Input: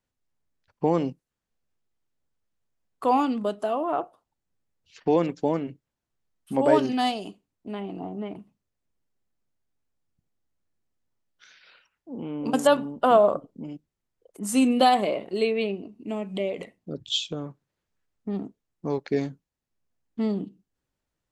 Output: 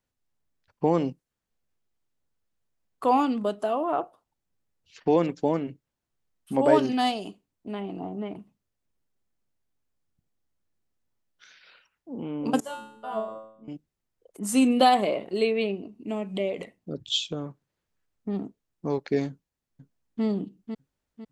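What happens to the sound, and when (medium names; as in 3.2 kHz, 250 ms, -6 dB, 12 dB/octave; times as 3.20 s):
12.60–13.68 s: feedback comb 110 Hz, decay 0.61 s, mix 100%
19.29–20.24 s: echo throw 500 ms, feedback 40%, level -7.5 dB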